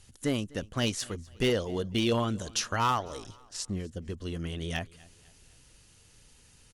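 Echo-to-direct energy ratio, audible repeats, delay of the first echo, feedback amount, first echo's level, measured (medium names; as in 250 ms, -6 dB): -22.5 dB, 2, 250 ms, 42%, -23.5 dB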